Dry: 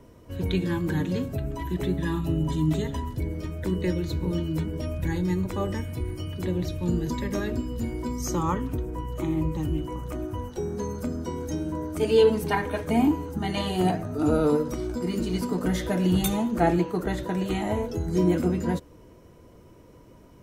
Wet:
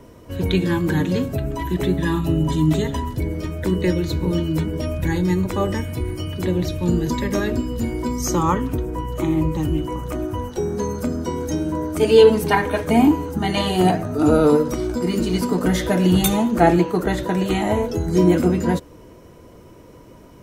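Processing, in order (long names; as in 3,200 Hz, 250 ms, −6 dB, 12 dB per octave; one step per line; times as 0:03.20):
low-shelf EQ 180 Hz −3.5 dB
level +8 dB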